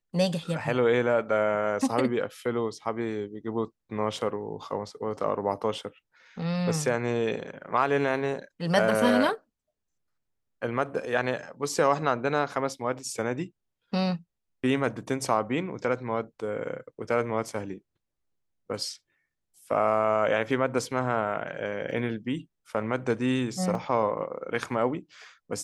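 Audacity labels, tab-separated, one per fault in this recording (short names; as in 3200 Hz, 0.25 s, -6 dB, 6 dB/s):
21.910000	21.910000	gap 2 ms
23.750000	23.750000	gap 2.3 ms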